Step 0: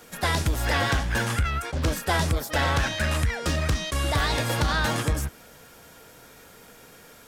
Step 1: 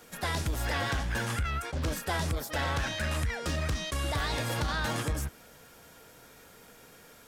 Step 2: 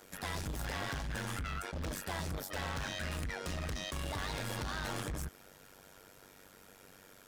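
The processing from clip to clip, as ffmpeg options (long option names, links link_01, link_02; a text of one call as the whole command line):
ffmpeg -i in.wav -af "alimiter=limit=-19dB:level=0:latency=1:release=29,volume=-4.5dB" out.wav
ffmpeg -i in.wav -af "tremolo=f=96:d=0.919,asoftclip=type=hard:threshold=-34dB" out.wav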